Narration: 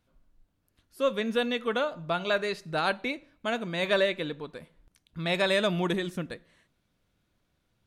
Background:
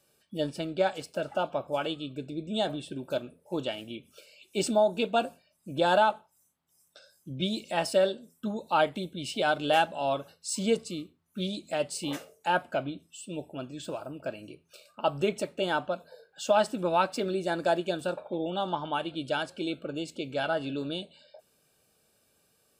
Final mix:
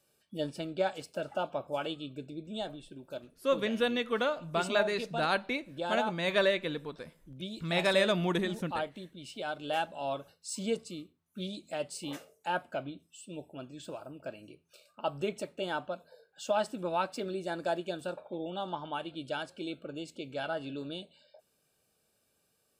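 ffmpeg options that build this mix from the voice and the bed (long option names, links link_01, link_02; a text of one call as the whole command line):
ffmpeg -i stem1.wav -i stem2.wav -filter_complex "[0:a]adelay=2450,volume=-2dB[link_01];[1:a]volume=0.5dB,afade=type=out:start_time=2.08:duration=0.7:silence=0.473151,afade=type=in:start_time=9.54:duration=0.49:silence=0.595662[link_02];[link_01][link_02]amix=inputs=2:normalize=0" out.wav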